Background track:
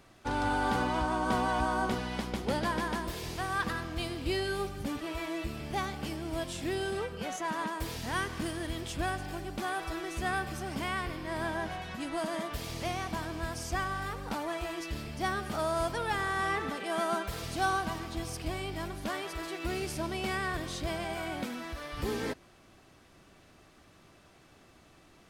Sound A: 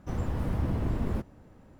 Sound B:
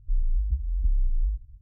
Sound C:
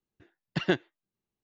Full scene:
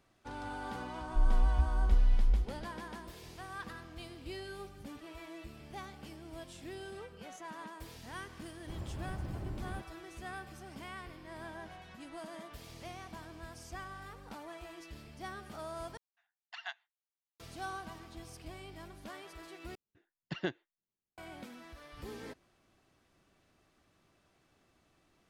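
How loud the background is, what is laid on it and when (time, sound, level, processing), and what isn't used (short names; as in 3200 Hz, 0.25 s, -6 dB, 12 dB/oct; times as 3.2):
background track -12 dB
1.07 add B -2 dB
8.6 add A -10.5 dB + notch comb 240 Hz
15.97 replace with C -10.5 dB + brick-wall FIR high-pass 660 Hz
19.75 replace with C -10 dB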